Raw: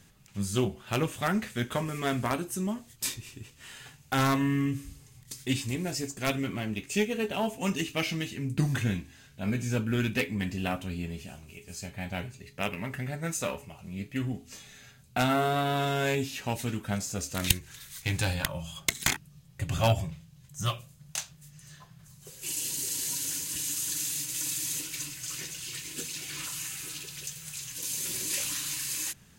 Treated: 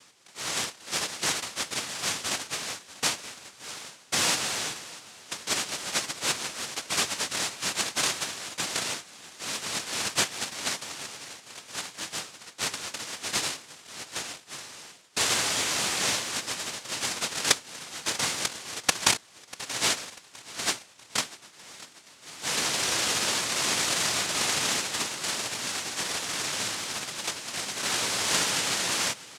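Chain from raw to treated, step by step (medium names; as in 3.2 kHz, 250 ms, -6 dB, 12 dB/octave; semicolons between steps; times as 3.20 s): tilt shelf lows -8.5 dB, about 860 Hz; noise-vocoded speech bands 1; feedback delay 642 ms, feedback 46%, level -19.5 dB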